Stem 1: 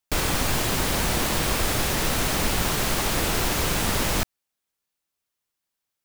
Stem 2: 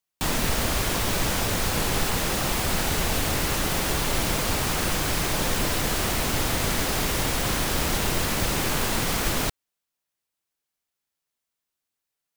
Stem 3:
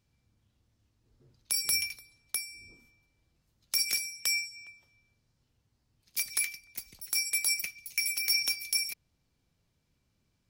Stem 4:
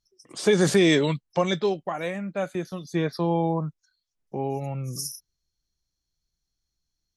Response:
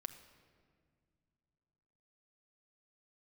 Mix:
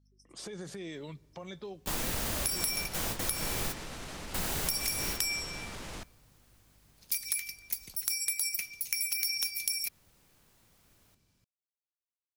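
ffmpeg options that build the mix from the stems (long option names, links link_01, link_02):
-filter_complex "[0:a]lowpass=9100,adelay=1800,volume=-13.5dB,asplit=2[link_01][link_02];[link_02]volume=-15.5dB[link_03];[1:a]adelay=1650,volume=-9.5dB[link_04];[2:a]adelay=950,volume=3dB[link_05];[3:a]acompressor=threshold=-27dB:ratio=8,volume=-11.5dB,afade=type=out:start_time=2.48:duration=0.3:silence=0.398107,asplit=3[link_06][link_07][link_08];[link_07]volume=-12dB[link_09];[link_08]apad=whole_len=617993[link_10];[link_04][link_10]sidechaingate=range=-34dB:threshold=-56dB:ratio=16:detection=peak[link_11];[link_11][link_05]amix=inputs=2:normalize=0,highshelf=frequency=6800:gain=7.5,acompressor=threshold=-25dB:ratio=6,volume=0dB[link_12];[link_01][link_06]amix=inputs=2:normalize=0,aeval=exprs='val(0)+0.000501*(sin(2*PI*50*n/s)+sin(2*PI*2*50*n/s)/2+sin(2*PI*3*50*n/s)/3+sin(2*PI*4*50*n/s)/4+sin(2*PI*5*50*n/s)/5)':channel_layout=same,alimiter=level_in=11dB:limit=-24dB:level=0:latency=1:release=83,volume=-11dB,volume=0dB[link_13];[4:a]atrim=start_sample=2205[link_14];[link_03][link_09]amix=inputs=2:normalize=0[link_15];[link_15][link_14]afir=irnorm=-1:irlink=0[link_16];[link_12][link_13][link_16]amix=inputs=3:normalize=0,acompressor=threshold=-29dB:ratio=2.5"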